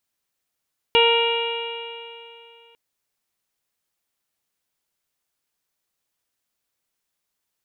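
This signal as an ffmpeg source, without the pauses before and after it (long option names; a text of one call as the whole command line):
ffmpeg -f lavfi -i "aevalsrc='0.158*pow(10,-3*t/2.74)*sin(2*PI*463.28*t)+0.112*pow(10,-3*t/2.74)*sin(2*PI*928.22*t)+0.0335*pow(10,-3*t/2.74)*sin(2*PI*1396.48*t)+0.0211*pow(10,-3*t/2.74)*sin(2*PI*1869.69*t)+0.0891*pow(10,-3*t/2.74)*sin(2*PI*2349.47*t)+0.158*pow(10,-3*t/2.74)*sin(2*PI*2837.37*t)+0.0398*pow(10,-3*t/2.74)*sin(2*PI*3334.92*t)+0.0158*pow(10,-3*t/2.74)*sin(2*PI*3843.6*t)':duration=1.8:sample_rate=44100" out.wav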